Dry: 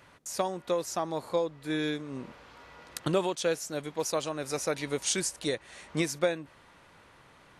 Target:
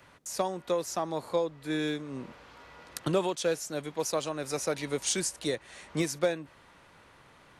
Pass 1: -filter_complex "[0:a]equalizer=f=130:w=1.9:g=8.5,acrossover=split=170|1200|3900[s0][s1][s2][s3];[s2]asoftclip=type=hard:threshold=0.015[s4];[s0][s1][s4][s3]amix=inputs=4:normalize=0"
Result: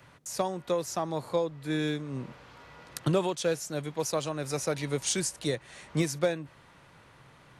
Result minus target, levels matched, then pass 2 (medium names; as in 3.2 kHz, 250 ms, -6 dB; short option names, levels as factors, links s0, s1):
125 Hz band +5.0 dB
-filter_complex "[0:a]acrossover=split=170|1200|3900[s0][s1][s2][s3];[s2]asoftclip=type=hard:threshold=0.015[s4];[s0][s1][s4][s3]amix=inputs=4:normalize=0"